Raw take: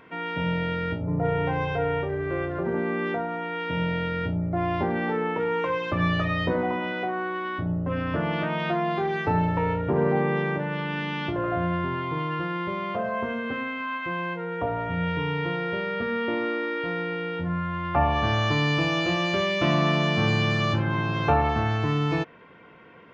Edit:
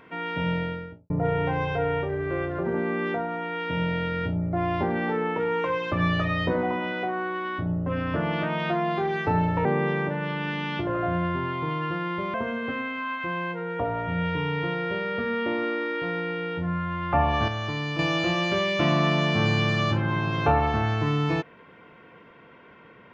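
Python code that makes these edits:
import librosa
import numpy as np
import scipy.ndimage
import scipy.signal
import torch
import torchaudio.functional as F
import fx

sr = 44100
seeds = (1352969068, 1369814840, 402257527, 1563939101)

y = fx.studio_fade_out(x, sr, start_s=0.5, length_s=0.6)
y = fx.edit(y, sr, fx.cut(start_s=9.65, length_s=0.49),
    fx.cut(start_s=12.83, length_s=0.33),
    fx.clip_gain(start_s=18.3, length_s=0.51, db=-6.5), tone=tone)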